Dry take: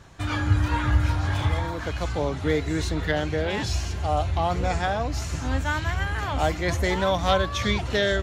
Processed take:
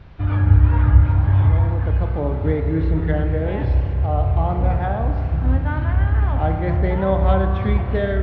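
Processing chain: tilt -2.5 dB/oct; in parallel at -7 dB: requantised 6-bit, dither triangular; on the sum: Gaussian blur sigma 2.9 samples; reverb RT60 2.4 s, pre-delay 31 ms, DRR 5 dB; gain -4.5 dB

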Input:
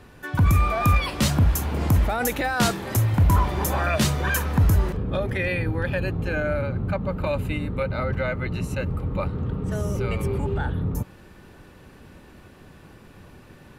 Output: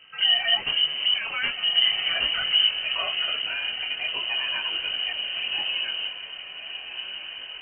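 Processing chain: rattling part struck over -29 dBFS, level -31 dBFS; time stretch by phase-locked vocoder 0.53×; diffused feedback echo 1.318 s, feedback 64%, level -10 dB; speed mistake 25 fps video run at 24 fps; inverted band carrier 3000 Hz; detuned doubles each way 14 cents

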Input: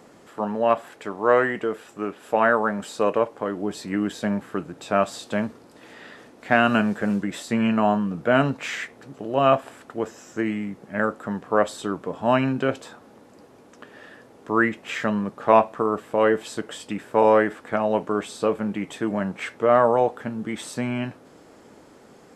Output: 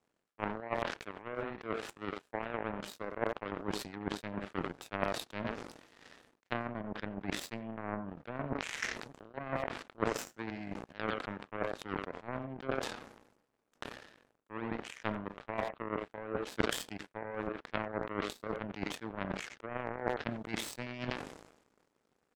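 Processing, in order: treble ducked by the level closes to 740 Hz, closed at -17 dBFS; speakerphone echo 90 ms, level -10 dB; reverse; compressor 20:1, threshold -34 dBFS, peak gain reduction 23 dB; reverse; power-law curve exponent 3; sustainer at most 67 dB/s; gain +12.5 dB

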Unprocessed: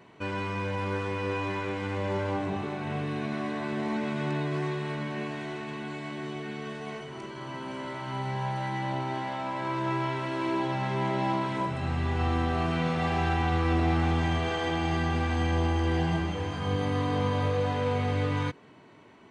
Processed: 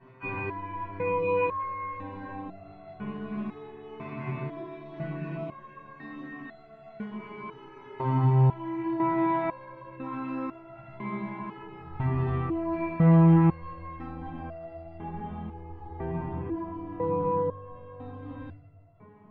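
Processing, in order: random spectral dropouts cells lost 21%; LPF 1700 Hz 12 dB/oct, from 14.03 s 1000 Hz; compressor, threshold -32 dBFS, peak gain reduction 10 dB; split-band echo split 480 Hz, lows 0.273 s, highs 0.159 s, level -13 dB; shoebox room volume 720 m³, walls furnished, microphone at 8.9 m; stepped resonator 2 Hz 130–680 Hz; gain +4.5 dB

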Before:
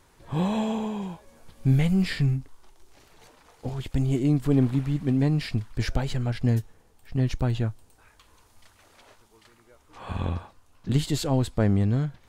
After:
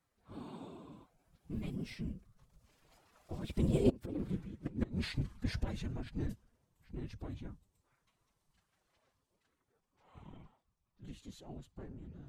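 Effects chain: Doppler pass-by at 4.3, 32 m/s, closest 2.6 m; flipped gate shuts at -28 dBFS, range -25 dB; whisperiser; formant-preserving pitch shift +4 st; gain +12.5 dB

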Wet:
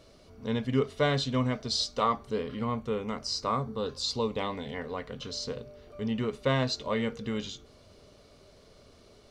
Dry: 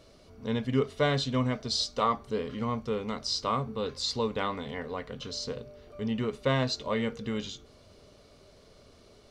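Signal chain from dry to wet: 2.42–4.73 bell 7300 Hz -> 1100 Hz -13.5 dB 0.29 oct

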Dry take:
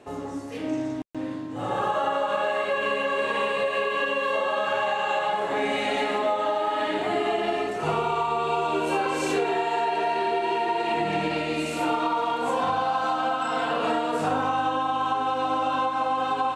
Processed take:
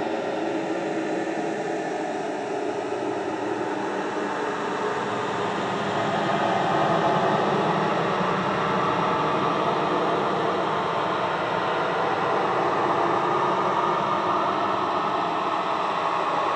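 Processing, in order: noise vocoder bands 12; Paulstretch 33×, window 0.10 s, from 7.69; gain +2 dB

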